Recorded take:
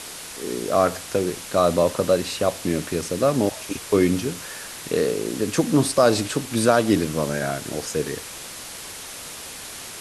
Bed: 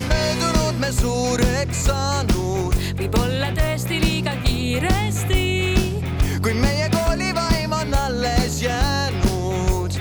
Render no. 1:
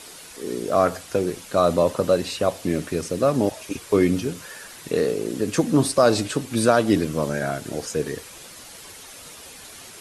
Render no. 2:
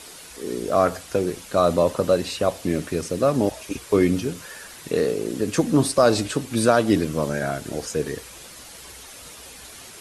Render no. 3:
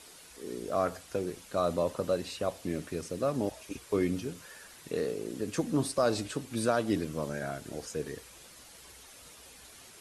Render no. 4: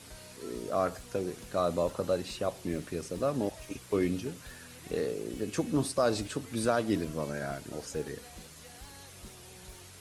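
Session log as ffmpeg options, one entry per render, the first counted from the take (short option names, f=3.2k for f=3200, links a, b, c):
-af "afftdn=nr=8:nf=-37"
-af "equalizer=f=60:t=o:w=0.24:g=14"
-af "volume=-10.5dB"
-filter_complex "[1:a]volume=-32dB[a];[0:a][a]amix=inputs=2:normalize=0"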